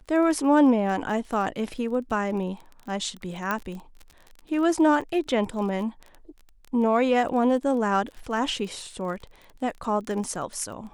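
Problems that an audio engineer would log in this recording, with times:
surface crackle 25 per second −34 dBFS
0:03.51: click −13 dBFS

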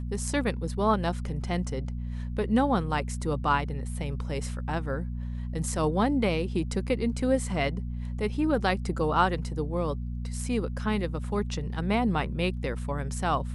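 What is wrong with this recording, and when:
mains hum 60 Hz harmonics 4 −33 dBFS

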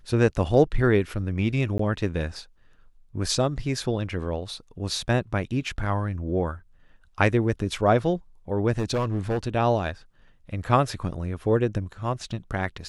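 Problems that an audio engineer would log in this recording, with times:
0:01.78–0:01.79: drop-out 14 ms
0:08.72–0:09.48: clipping −21 dBFS

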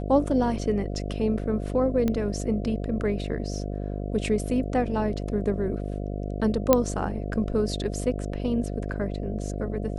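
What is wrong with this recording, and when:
mains buzz 50 Hz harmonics 14 −31 dBFS
0:02.08: click −14 dBFS
0:06.73: click −4 dBFS

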